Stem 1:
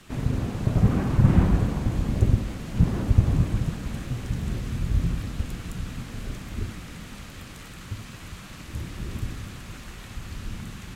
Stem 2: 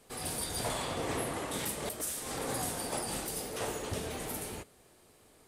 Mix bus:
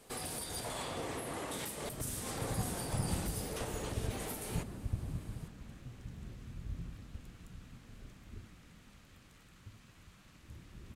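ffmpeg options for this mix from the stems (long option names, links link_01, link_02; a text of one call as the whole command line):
ffmpeg -i stem1.wav -i stem2.wav -filter_complex "[0:a]adelay=1750,volume=-18.5dB[link_01];[1:a]alimiter=level_in=8.5dB:limit=-24dB:level=0:latency=1:release=304,volume=-8.5dB,volume=2dB[link_02];[link_01][link_02]amix=inputs=2:normalize=0" out.wav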